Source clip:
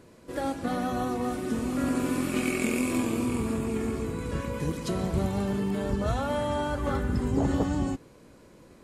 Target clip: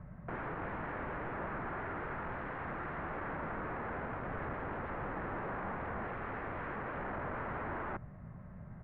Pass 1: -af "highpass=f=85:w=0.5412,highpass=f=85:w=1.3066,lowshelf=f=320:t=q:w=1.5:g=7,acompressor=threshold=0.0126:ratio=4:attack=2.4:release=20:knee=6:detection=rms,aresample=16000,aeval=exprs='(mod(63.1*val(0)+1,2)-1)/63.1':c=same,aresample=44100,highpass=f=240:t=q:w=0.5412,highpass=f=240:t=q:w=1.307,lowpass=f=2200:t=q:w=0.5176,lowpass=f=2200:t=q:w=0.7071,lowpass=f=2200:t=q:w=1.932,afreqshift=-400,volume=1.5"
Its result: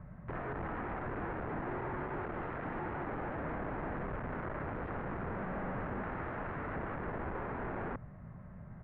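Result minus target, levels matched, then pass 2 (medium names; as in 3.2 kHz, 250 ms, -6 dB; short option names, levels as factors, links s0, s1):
compression: peak gain reduction +5 dB
-af "highpass=f=85:w=0.5412,highpass=f=85:w=1.3066,lowshelf=f=320:t=q:w=1.5:g=7,acompressor=threshold=0.0266:ratio=4:attack=2.4:release=20:knee=6:detection=rms,aresample=16000,aeval=exprs='(mod(63.1*val(0)+1,2)-1)/63.1':c=same,aresample=44100,highpass=f=240:t=q:w=0.5412,highpass=f=240:t=q:w=1.307,lowpass=f=2200:t=q:w=0.5176,lowpass=f=2200:t=q:w=0.7071,lowpass=f=2200:t=q:w=1.932,afreqshift=-400,volume=1.5"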